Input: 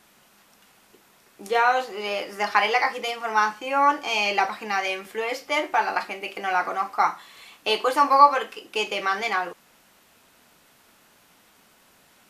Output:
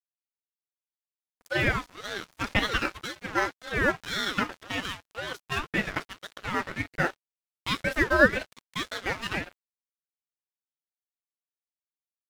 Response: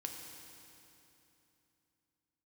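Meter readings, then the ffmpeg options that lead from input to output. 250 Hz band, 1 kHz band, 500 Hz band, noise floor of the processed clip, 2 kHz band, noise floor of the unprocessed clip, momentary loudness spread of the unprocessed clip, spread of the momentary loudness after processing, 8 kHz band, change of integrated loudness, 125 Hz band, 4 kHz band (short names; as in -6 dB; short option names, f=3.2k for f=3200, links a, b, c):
+4.0 dB, -13.0 dB, -4.5 dB, under -85 dBFS, -1.5 dB, -58 dBFS, 10 LU, 12 LU, -3.0 dB, -5.5 dB, n/a, -4.0 dB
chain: -af "aeval=exprs='sgn(val(0))*max(abs(val(0))-0.02,0)':c=same,aeval=exprs='val(0)*sin(2*PI*770*n/s+770*0.4/1.9*sin(2*PI*1.9*n/s))':c=same,volume=-1.5dB"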